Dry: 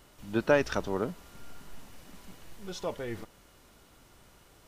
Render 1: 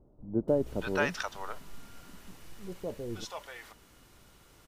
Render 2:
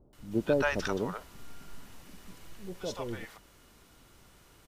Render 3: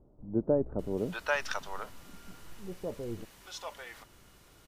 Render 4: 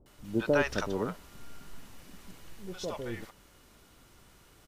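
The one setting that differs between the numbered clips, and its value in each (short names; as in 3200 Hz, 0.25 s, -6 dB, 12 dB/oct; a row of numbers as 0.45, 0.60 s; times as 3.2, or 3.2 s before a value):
bands offset in time, time: 480, 130, 790, 60 ms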